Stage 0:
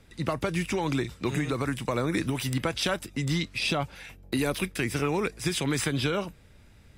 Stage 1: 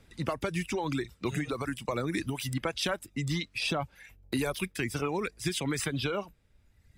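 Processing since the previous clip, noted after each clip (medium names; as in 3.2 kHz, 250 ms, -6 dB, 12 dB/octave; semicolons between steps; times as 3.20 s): reverb removal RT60 1.4 s; trim -2.5 dB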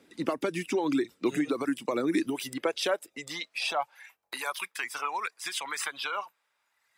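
high-pass sweep 290 Hz -> 1 kHz, 2.16–4.16 s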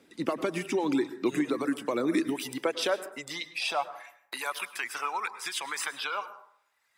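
plate-style reverb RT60 0.63 s, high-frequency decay 0.45×, pre-delay 90 ms, DRR 13 dB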